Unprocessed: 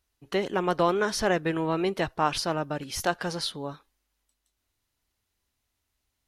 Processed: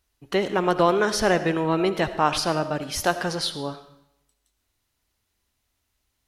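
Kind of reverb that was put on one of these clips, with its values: digital reverb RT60 0.81 s, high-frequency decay 0.95×, pre-delay 35 ms, DRR 11.5 dB; gain +4 dB

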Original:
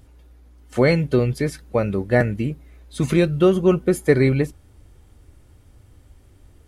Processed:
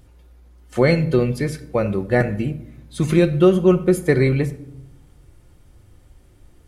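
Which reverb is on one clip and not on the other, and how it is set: shoebox room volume 1900 m³, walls furnished, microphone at 0.89 m

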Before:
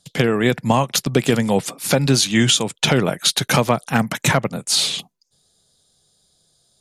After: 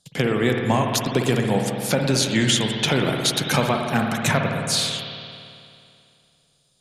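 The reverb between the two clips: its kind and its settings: spring tank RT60 2.5 s, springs 55 ms, chirp 70 ms, DRR 2 dB; gain -4.5 dB

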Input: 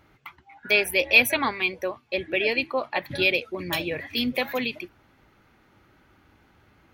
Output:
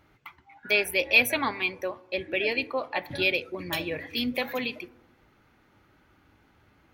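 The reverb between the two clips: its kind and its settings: FDN reverb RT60 1 s, low-frequency decay 1.2×, high-frequency decay 0.25×, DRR 16 dB; gain -3 dB

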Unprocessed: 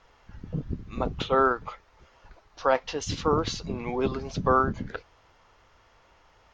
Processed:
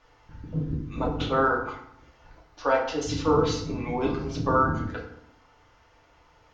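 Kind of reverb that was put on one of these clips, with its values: FDN reverb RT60 0.71 s, low-frequency decay 1.35×, high-frequency decay 0.65×, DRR -2 dB; gain -3.5 dB

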